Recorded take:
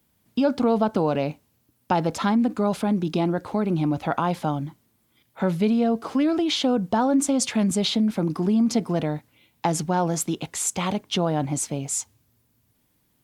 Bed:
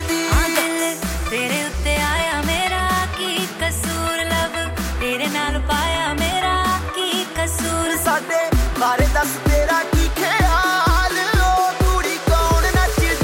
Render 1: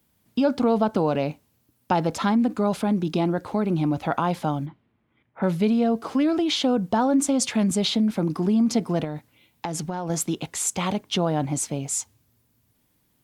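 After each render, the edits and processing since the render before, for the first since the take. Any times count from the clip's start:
0:04.65–0:05.42: low-pass filter 3,400 Hz → 2,100 Hz 24 dB per octave
0:09.04–0:10.10: downward compressor, threshold −25 dBFS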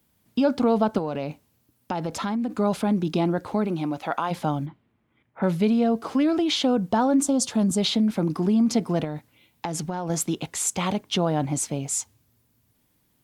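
0:00.98–0:02.54: downward compressor 2.5 to 1, threshold −26 dBFS
0:03.66–0:04.30: high-pass filter 240 Hz → 770 Hz 6 dB per octave
0:07.23–0:07.78: parametric band 2,200 Hz −13.5 dB 0.79 octaves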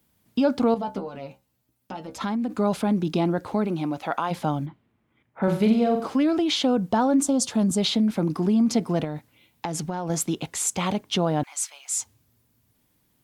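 0:00.74–0:02.21: stiff-string resonator 64 Hz, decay 0.23 s, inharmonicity 0.002
0:05.43–0:06.07: flutter between parallel walls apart 7.9 metres, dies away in 0.47 s
0:11.43–0:11.97: high-pass filter 1,100 Hz 24 dB per octave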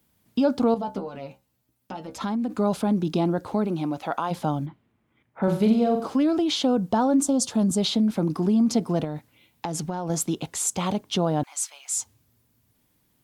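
dynamic equaliser 2,100 Hz, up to −6 dB, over −45 dBFS, Q 1.5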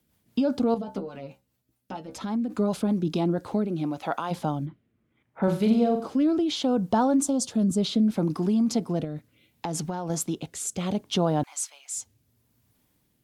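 rotating-speaker cabinet horn 5 Hz, later 0.7 Hz, at 0:02.95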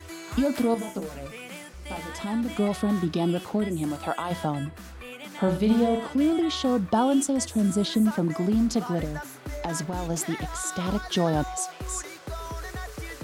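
mix in bed −19.5 dB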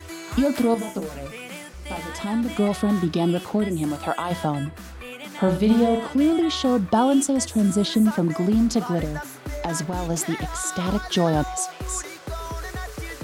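level +3.5 dB

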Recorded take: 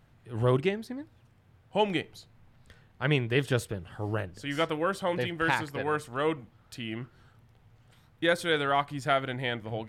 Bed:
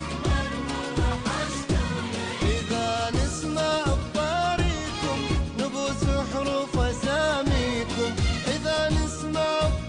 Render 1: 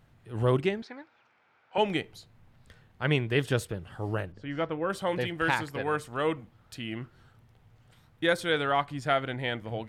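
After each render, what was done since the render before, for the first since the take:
0:00.82–0:01.78: loudspeaker in its box 440–5,800 Hz, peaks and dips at 870 Hz +6 dB, 1,400 Hz +10 dB, 2,300 Hz +9 dB
0:04.32–0:04.90: head-to-tape spacing loss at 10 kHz 31 dB
0:08.40–0:09.48: high-shelf EQ 9,800 Hz −8 dB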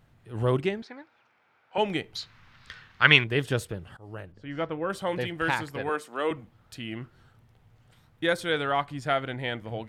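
0:02.15–0:03.24: flat-topped bell 2,500 Hz +14.5 dB 2.9 octaves
0:03.97–0:04.62: fade in, from −19.5 dB
0:05.89–0:06.31: high-pass filter 230 Hz 24 dB per octave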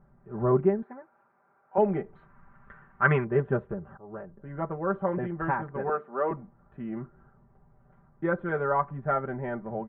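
inverse Chebyshev low-pass filter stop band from 4,500 Hz, stop band 60 dB
comb filter 5.1 ms, depth 87%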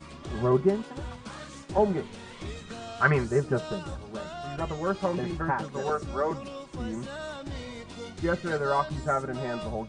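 mix in bed −14 dB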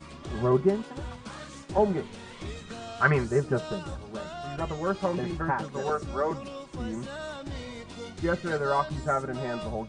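no processing that can be heard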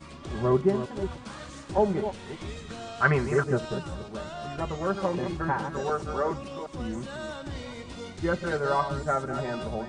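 delay that plays each chunk backwards 215 ms, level −9 dB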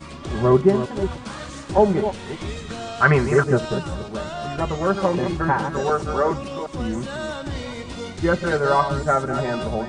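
level +7.5 dB
brickwall limiter −3 dBFS, peak gain reduction 2 dB

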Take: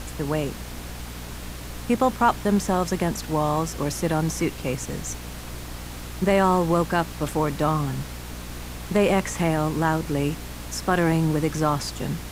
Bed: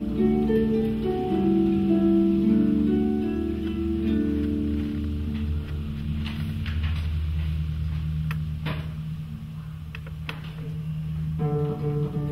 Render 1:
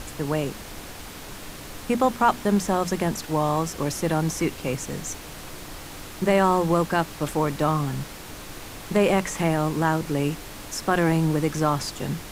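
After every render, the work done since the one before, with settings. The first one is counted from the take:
mains-hum notches 60/120/180/240 Hz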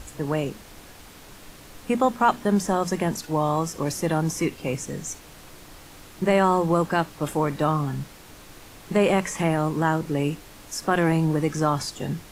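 noise reduction from a noise print 7 dB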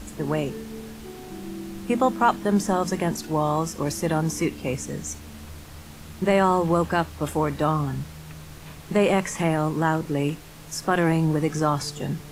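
mix in bed −14.5 dB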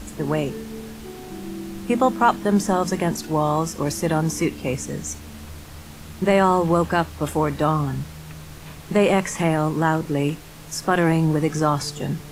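level +2.5 dB

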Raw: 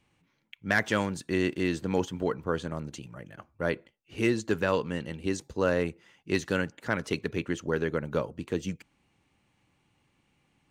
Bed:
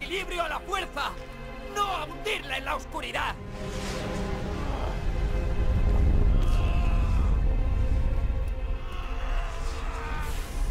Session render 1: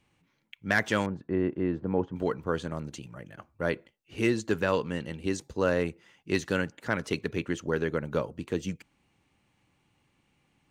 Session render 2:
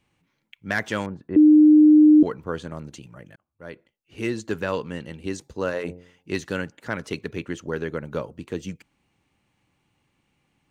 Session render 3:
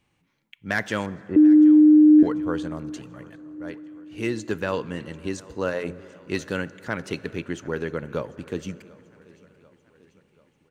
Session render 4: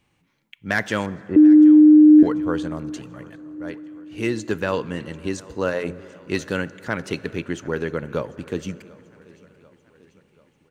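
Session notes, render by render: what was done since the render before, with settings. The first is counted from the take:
0:01.06–0:02.16: low-pass filter 1,100 Hz
0:01.36–0:02.23: beep over 304 Hz −9 dBFS; 0:03.36–0:04.42: fade in; 0:05.56–0:06.31: hum removal 88.92 Hz, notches 11
repeating echo 740 ms, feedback 57%, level −23 dB; dense smooth reverb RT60 4.2 s, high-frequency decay 0.4×, DRR 17.5 dB
level +3 dB

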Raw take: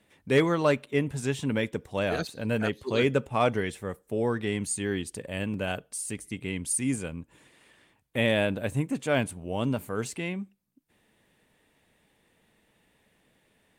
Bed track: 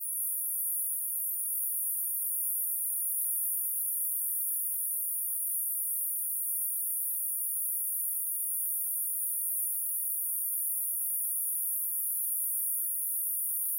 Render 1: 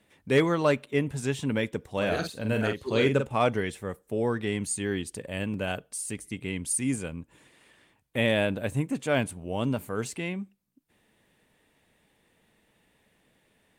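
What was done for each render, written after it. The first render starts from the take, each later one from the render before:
0:01.92–0:03.35: double-tracking delay 45 ms −6.5 dB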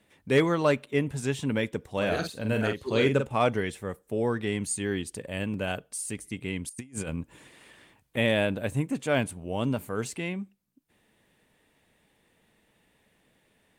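0:06.69–0:08.17: compressor whose output falls as the input rises −36 dBFS, ratio −0.5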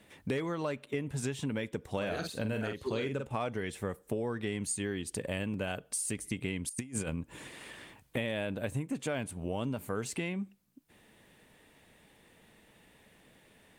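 in parallel at −1 dB: brickwall limiter −18 dBFS, peak gain reduction 7 dB
on the sum: downward compressor 10 to 1, threshold −31 dBFS, peak gain reduction 17.5 dB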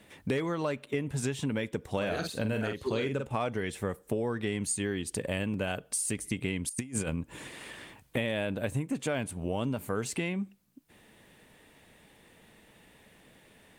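level +3 dB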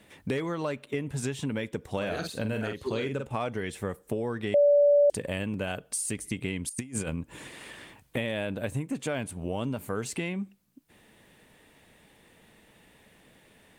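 0:04.54–0:05.10: beep over 578 Hz −16.5 dBFS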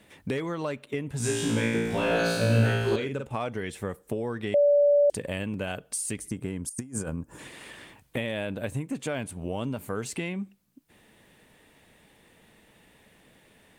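0:01.18–0:02.96: flutter between parallel walls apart 3 metres, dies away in 1.3 s
0:06.28–0:07.39: flat-topped bell 2,900 Hz −11.5 dB 1.3 octaves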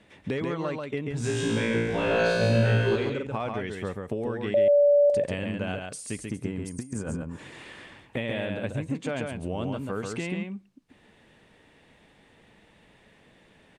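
high-frequency loss of the air 74 metres
single-tap delay 138 ms −4 dB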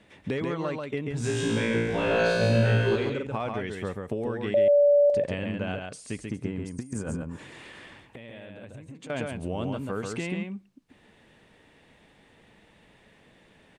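0:05.00–0:06.86: high-frequency loss of the air 59 metres
0:07.42–0:09.10: downward compressor, threshold −41 dBFS

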